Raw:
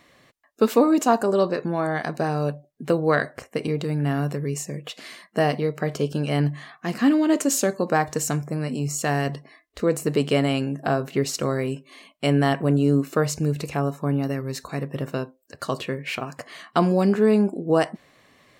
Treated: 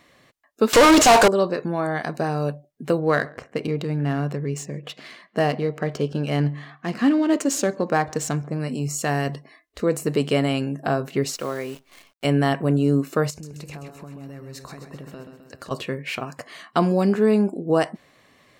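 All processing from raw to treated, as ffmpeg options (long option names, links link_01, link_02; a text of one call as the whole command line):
ffmpeg -i in.wav -filter_complex "[0:a]asettb=1/sr,asplit=3[link_01][link_02][link_03];[link_01]atrim=end=0.734[link_04];[link_02]atrim=start=0.73:end=1.28,asetpts=PTS-STARTPTS,afade=type=in:duration=0.004:curve=qsin,afade=type=out:start_time=0.546:duration=0.004:curve=qsin,bass=frequency=250:gain=-10,treble=frequency=4000:gain=9,asplit=2[link_05][link_06];[link_06]highpass=frequency=720:poles=1,volume=34dB,asoftclip=type=tanh:threshold=-5.5dB[link_07];[link_05][link_07]amix=inputs=2:normalize=0,lowpass=frequency=6700:poles=1,volume=-6dB,adynamicsmooth=sensitivity=3:basefreq=2100[link_08];[link_03]atrim=start=1.276[link_09];[link_04][link_08]acrossfade=duration=0.004:curve1=hsin:curve2=qsin[link_10];[link_10][link_09]acrossfade=duration=0.004:curve1=qsin:curve2=hsin,asettb=1/sr,asplit=3[link_11][link_12][link_13];[link_11]atrim=end=2.994[link_14];[link_12]atrim=start=2.99:end=8.6,asetpts=PTS-STARTPTS,afade=type=in:duration=0.004:curve=qsin,afade=type=out:start_time=5.606:duration=0.004:curve=qsin,adynamicsmooth=sensitivity=8:basefreq=4000,asplit=2[link_15][link_16];[link_16]adelay=138,lowpass=frequency=1700:poles=1,volume=-23.5dB,asplit=2[link_17][link_18];[link_18]adelay=138,lowpass=frequency=1700:poles=1,volume=0.38[link_19];[link_15][link_17][link_19]amix=inputs=3:normalize=0,atrim=end_sample=247401[link_20];[link_13]atrim=start=8.596[link_21];[link_14][link_20]acrossfade=duration=0.004:curve1=hsin:curve2=qsin[link_22];[link_22][link_21]acrossfade=duration=0.004:curve1=qsin:curve2=hsin,asettb=1/sr,asplit=3[link_23][link_24][link_25];[link_23]atrim=end=11.344[link_26];[link_24]atrim=start=11.34:end=12.25,asetpts=PTS-STARTPTS,afade=type=in:duration=0.004:curve=qsin,afade=type=out:start_time=0.906:duration=0.004:curve=qsin,highpass=frequency=470:poles=1,highshelf=frequency=5100:gain=-9,acrusher=bits=8:dc=4:mix=0:aa=0.000001[link_27];[link_25]atrim=start=12.246[link_28];[link_26][link_27]acrossfade=duration=0.004:curve1=hsin:curve2=qsin[link_29];[link_29][link_28]acrossfade=duration=0.004:curve1=qsin:curve2=hsin,asettb=1/sr,asplit=3[link_30][link_31][link_32];[link_30]atrim=end=13.304[link_33];[link_31]atrim=start=13.3:end=15.71,asetpts=PTS-STARTPTS,afade=type=in:duration=0.004:curve=qsin,afade=type=out:start_time=2.406:duration=0.004:curve=qsin,acompressor=threshold=-34dB:ratio=16:attack=3.2:release=140:knee=1:detection=peak,aecho=1:1:130|260|390|520|650|780|910:0.398|0.231|0.134|0.0777|0.0451|0.0261|0.0152,atrim=end_sample=106281[link_34];[link_32]atrim=start=15.706[link_35];[link_33][link_34]acrossfade=duration=0.004:curve1=hsin:curve2=qsin[link_36];[link_36][link_35]acrossfade=duration=0.004:curve1=qsin:curve2=hsin" out.wav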